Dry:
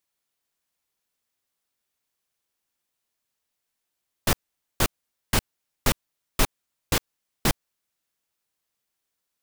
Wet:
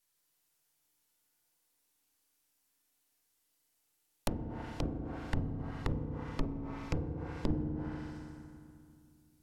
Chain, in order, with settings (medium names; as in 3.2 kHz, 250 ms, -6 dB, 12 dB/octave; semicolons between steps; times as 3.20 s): partial rectifier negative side -12 dB; treble shelf 6.1 kHz +8.5 dB; compression 16:1, threshold -24 dBFS, peak gain reduction 11 dB; FDN reverb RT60 2.3 s, low-frequency decay 1.35×, high-frequency decay 0.6×, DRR -2 dB; low-pass that closes with the level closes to 400 Hz, closed at -29 dBFS